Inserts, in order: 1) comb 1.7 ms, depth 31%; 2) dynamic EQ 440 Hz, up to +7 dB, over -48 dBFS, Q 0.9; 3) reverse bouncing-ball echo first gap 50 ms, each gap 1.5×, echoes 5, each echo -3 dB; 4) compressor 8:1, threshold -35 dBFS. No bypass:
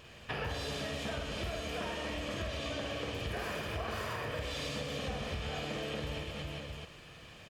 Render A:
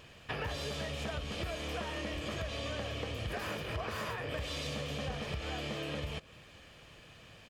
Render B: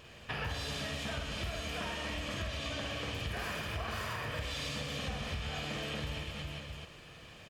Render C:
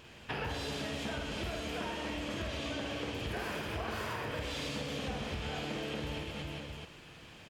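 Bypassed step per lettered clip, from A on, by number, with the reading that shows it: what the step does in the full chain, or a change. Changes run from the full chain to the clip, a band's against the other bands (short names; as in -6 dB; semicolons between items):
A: 3, momentary loudness spread change +12 LU; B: 2, 500 Hz band -5.0 dB; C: 1, 250 Hz band +2.5 dB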